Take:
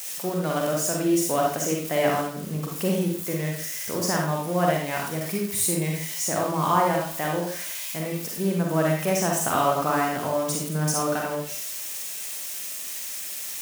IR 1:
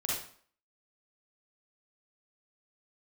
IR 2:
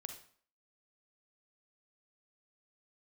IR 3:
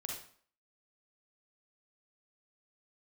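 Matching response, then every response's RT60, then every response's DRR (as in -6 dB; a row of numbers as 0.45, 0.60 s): 3; 0.50, 0.50, 0.50 s; -5.5, 5.5, -1.0 dB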